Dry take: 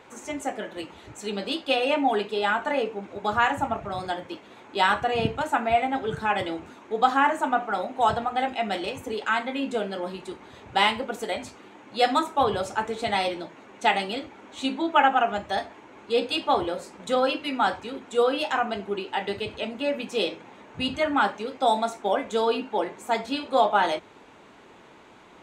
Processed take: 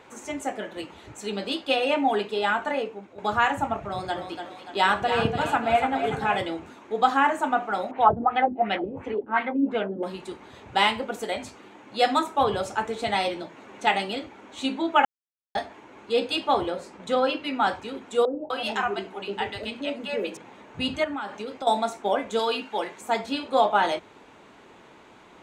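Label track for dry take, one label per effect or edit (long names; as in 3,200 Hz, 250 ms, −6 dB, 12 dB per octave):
2.610000	3.180000	fade out, to −11 dB
3.850000	6.390000	echo with a time of its own for lows and highs split 530 Hz, lows 100 ms, highs 290 ms, level −7.5 dB
7.910000	10.030000	auto-filter low-pass sine 2.8 Hz 250–2,800 Hz
13.420000	13.870000	multiband upward and downward compressor depth 40%
15.050000	15.550000	silence
16.700000	17.670000	high-shelf EQ 8,600 Hz −11 dB
18.250000	20.370000	three-band delay without the direct sound mids, lows, highs 90/250 ms, splits 170/580 Hz
21.040000	21.670000	downward compressor, threshold −29 dBFS
22.390000	23.010000	tilt shelving filter lows −5.5 dB, about 1,100 Hz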